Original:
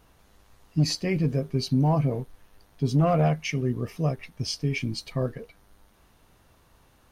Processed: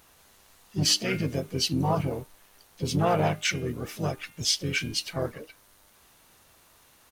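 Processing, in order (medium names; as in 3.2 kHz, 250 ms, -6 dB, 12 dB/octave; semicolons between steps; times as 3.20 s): tilt EQ +2.5 dB/octave; de-hum 303.7 Hz, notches 12; harmony voices -7 st -7 dB, +3 st -13 dB, +4 st -9 dB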